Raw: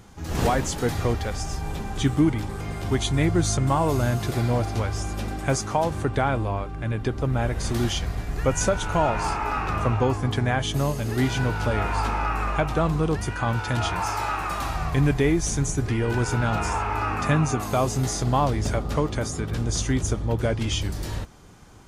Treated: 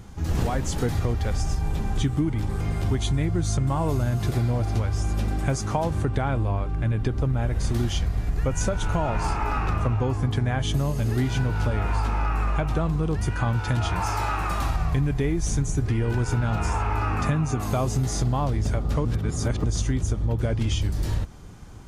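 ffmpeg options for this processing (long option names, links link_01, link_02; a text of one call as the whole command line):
ffmpeg -i in.wav -filter_complex "[0:a]asplit=3[link_01][link_02][link_03];[link_01]atrim=end=19.052[link_04];[link_02]atrim=start=19.048:end=19.642,asetpts=PTS-STARTPTS,areverse[link_05];[link_03]atrim=start=19.638[link_06];[link_04][link_05]acrossfade=duration=0.004:curve1=hsin:curve2=hsin[link_07];[link_07][link_06]acrossfade=duration=0.004:curve1=hsin:curve2=hsin,lowshelf=frequency=190:gain=9.5,acompressor=threshold=-20dB:ratio=6" out.wav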